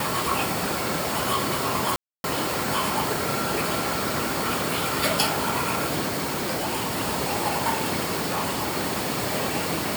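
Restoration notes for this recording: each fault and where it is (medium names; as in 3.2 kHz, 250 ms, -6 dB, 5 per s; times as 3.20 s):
1.96–2.24 s: dropout 281 ms
6.07–7.02 s: clipped -23 dBFS
8.28–8.77 s: clipped -22 dBFS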